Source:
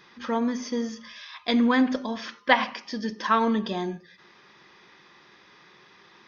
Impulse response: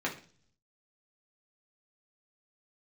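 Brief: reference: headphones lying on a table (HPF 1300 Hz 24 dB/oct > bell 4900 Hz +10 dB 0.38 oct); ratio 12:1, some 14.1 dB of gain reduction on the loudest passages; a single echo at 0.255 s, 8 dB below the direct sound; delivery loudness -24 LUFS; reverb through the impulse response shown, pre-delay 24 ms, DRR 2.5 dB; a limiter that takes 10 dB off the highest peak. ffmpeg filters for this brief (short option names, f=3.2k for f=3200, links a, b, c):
-filter_complex "[0:a]acompressor=threshold=-27dB:ratio=12,alimiter=level_in=1dB:limit=-24dB:level=0:latency=1,volume=-1dB,aecho=1:1:255:0.398,asplit=2[a][b];[1:a]atrim=start_sample=2205,adelay=24[c];[b][c]afir=irnorm=-1:irlink=0,volume=-9.5dB[d];[a][d]amix=inputs=2:normalize=0,highpass=f=1.3k:w=0.5412,highpass=f=1.3k:w=1.3066,equalizer=f=4.9k:t=o:w=0.38:g=10,volume=12.5dB"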